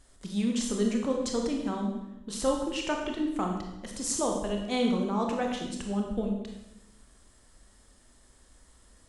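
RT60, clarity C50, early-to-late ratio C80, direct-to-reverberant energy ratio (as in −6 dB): 0.95 s, 3.5 dB, 6.0 dB, 1.0 dB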